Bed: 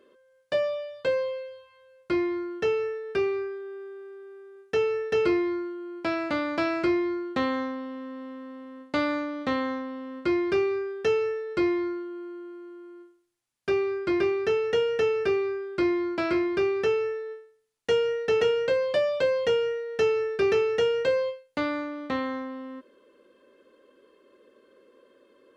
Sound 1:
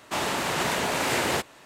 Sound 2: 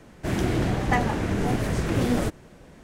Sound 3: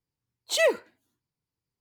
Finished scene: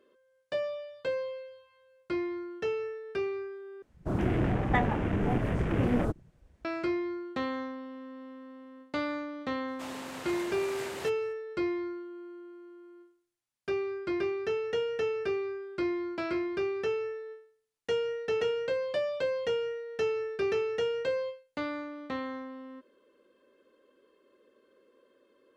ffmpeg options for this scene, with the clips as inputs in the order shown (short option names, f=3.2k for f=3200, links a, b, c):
-filter_complex "[0:a]volume=-6.5dB[a];[2:a]afwtdn=0.02[b];[a]asplit=2[c][d];[c]atrim=end=3.824[e];[b]atrim=end=2.83,asetpts=PTS-STARTPTS,volume=-3.5dB[f];[d]atrim=start=6.646[g];[1:a]atrim=end=1.65,asetpts=PTS-STARTPTS,volume=-15.5dB,afade=t=in:d=0.004:c=hsin,afade=t=out:st=1.646:d=0.004:c=hsin,adelay=9680[h];[e][f]acrossfade=d=0.004:c1=hsin:c2=hsin[i];[i][g]acrossfade=d=0.004:c1=hsin:c2=hsin[j];[j][h]amix=inputs=2:normalize=0"